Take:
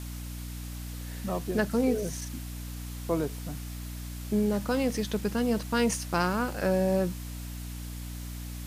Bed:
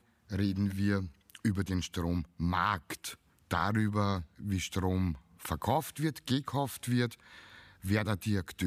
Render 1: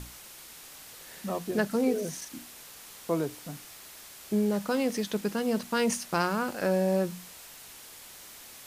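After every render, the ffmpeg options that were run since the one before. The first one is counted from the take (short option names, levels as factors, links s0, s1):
-af "bandreject=f=60:t=h:w=6,bandreject=f=120:t=h:w=6,bandreject=f=180:t=h:w=6,bandreject=f=240:t=h:w=6,bandreject=f=300:t=h:w=6"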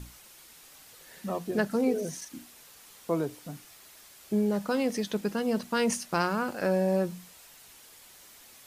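-af "afftdn=nr=6:nf=-48"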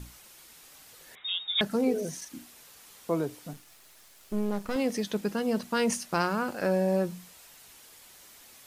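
-filter_complex "[0:a]asettb=1/sr,asplit=3[s0][s1][s2];[s0]atrim=end=1.154[s3];[s1]atrim=start=1.15:end=1.61,asetpts=PTS-STARTPTS,afade=t=in:d=0.004:c=qsin,afade=t=out:st=0.456:d=0.004:c=qsin,lowpass=f=3300:t=q:w=0.5098,lowpass=f=3300:t=q:w=0.6013,lowpass=f=3300:t=q:w=0.9,lowpass=f=3300:t=q:w=2.563,afreqshift=-3900[s4];[s2]atrim=start=1.606[s5];[s3][s4]acrossfade=d=0.004:c1=hsin:c2=qsin[s6];[s6][s5]acrossfade=d=0.004:c1=qsin:c2=hsin,asettb=1/sr,asplit=3[s7][s8][s9];[s7]atrim=end=3.534[s10];[s8]atrim=start=3.53:end=4.76,asetpts=PTS-STARTPTS,afade=t=in:d=0.004:c=qsin,afade=t=out:st=1.226:d=0.004:c=qsin,aeval=exprs='if(lt(val(0),0),0.251*val(0),val(0))':c=same[s11];[s9]atrim=start=4.756[s12];[s10][s11]acrossfade=d=0.004:c1=hsin:c2=qsin[s13];[s13][s12]acrossfade=d=0.004:c1=qsin:c2=hsin"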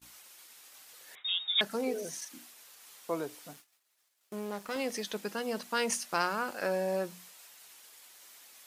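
-af "highpass=f=710:p=1,agate=range=0.0501:threshold=0.00224:ratio=16:detection=peak"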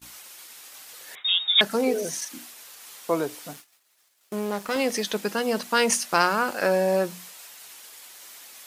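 -af "volume=2.99"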